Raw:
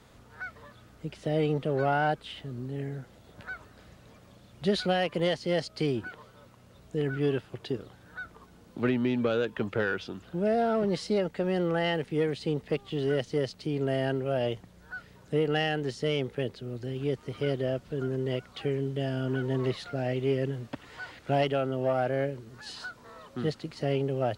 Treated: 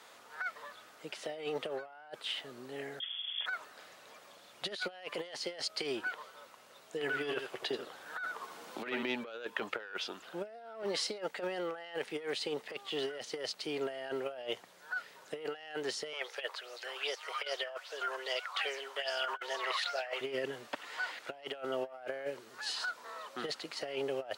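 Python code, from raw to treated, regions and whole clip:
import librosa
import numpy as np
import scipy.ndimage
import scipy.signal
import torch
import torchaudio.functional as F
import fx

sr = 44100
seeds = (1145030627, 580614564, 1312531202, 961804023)

y = fx.chain(x, sr, fx.peak_eq(hz=66.0, db=13.0, octaves=2.8),
    fx.freq_invert(carrier_hz=3400), at=(3.0, 3.46))
y = fx.chain(y, sr, fx.doubler(ms=13.0, db=-12.5),
    fx.echo_single(ms=82, db=-10.0),
    fx.band_squash(depth_pct=40), at=(7.01, 9.03))
y = fx.chain(y, sr, fx.highpass(hz=530.0, slope=24),
    fx.bell_lfo(hz=2.5, low_hz=990.0, high_hz=6000.0, db=14), at=(16.13, 20.21))
y = scipy.signal.sosfilt(scipy.signal.butter(2, 660.0, 'highpass', fs=sr, output='sos'), y)
y = fx.over_compress(y, sr, threshold_db=-38.0, ratio=-0.5)
y = F.gain(torch.from_numpy(y), 1.0).numpy()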